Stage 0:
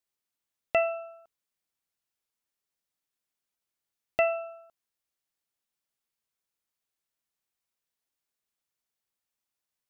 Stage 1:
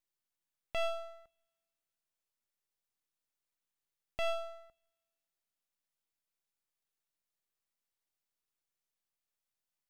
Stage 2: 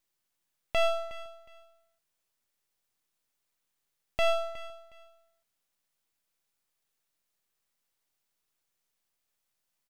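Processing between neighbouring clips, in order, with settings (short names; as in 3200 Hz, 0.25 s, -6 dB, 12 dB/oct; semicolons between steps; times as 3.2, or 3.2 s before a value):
limiter -24.5 dBFS, peak gain reduction 10 dB; half-wave rectifier; two-slope reverb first 0.45 s, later 1.6 s, from -19 dB, DRR 19.5 dB
feedback echo 0.364 s, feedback 24%, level -17 dB; gain +8 dB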